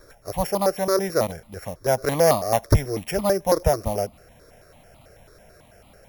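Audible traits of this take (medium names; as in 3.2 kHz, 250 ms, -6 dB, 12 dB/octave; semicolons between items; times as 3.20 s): a buzz of ramps at a fixed pitch in blocks of 8 samples; notches that jump at a steady rate 9.1 Hz 780–1600 Hz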